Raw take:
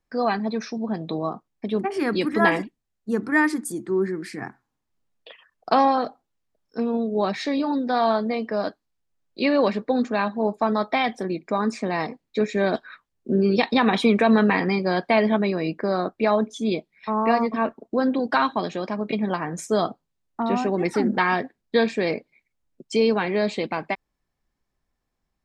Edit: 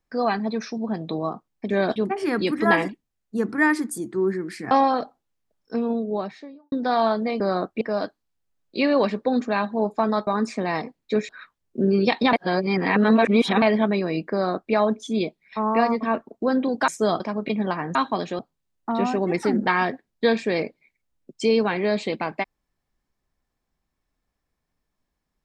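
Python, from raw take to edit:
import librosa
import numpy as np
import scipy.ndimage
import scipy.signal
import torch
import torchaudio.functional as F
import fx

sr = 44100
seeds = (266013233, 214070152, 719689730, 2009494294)

y = fx.studio_fade_out(x, sr, start_s=6.85, length_s=0.91)
y = fx.edit(y, sr, fx.cut(start_s=4.45, length_s=1.3),
    fx.cut(start_s=10.9, length_s=0.62),
    fx.move(start_s=12.54, length_s=0.26, to_s=1.7),
    fx.reverse_span(start_s=13.84, length_s=1.29),
    fx.duplicate(start_s=15.83, length_s=0.41, to_s=8.44),
    fx.swap(start_s=18.39, length_s=0.44, other_s=19.58, other_length_s=0.32), tone=tone)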